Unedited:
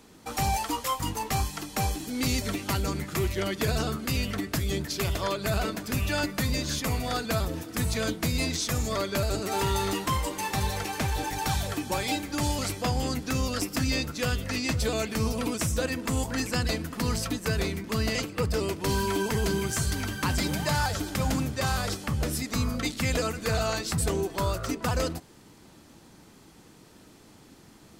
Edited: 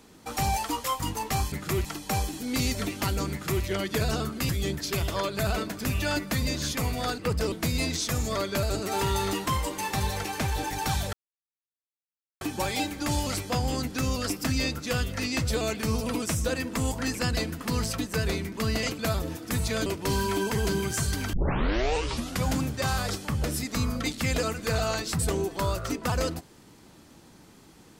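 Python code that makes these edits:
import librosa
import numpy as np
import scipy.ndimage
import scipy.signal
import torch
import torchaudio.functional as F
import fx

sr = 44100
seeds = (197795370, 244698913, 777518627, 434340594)

y = fx.edit(x, sr, fx.duplicate(start_s=2.98, length_s=0.33, to_s=1.52),
    fx.cut(start_s=4.16, length_s=0.4),
    fx.swap(start_s=7.25, length_s=0.87, other_s=18.31, other_length_s=0.34),
    fx.insert_silence(at_s=11.73, length_s=1.28),
    fx.tape_start(start_s=20.12, length_s=1.12), tone=tone)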